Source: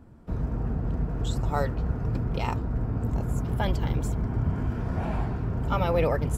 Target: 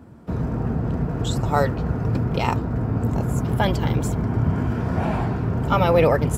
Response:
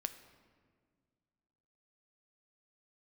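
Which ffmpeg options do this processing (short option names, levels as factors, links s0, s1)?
-af "highpass=92,volume=2.51"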